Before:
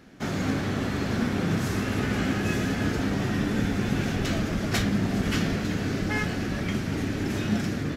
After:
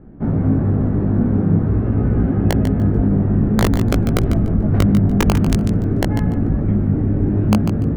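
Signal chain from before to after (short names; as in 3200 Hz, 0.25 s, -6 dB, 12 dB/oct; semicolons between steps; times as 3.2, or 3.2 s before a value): LPF 1000 Hz 12 dB/oct; tilt -3.5 dB/oct; in parallel at 0 dB: limiter -14 dBFS, peak gain reduction 9 dB; on the sum: wrapped overs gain 3.5 dB; chorus 0.49 Hz, delay 17.5 ms, depth 2.5 ms; on a send: thinning echo 0.146 s, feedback 20%, level -8.5 dB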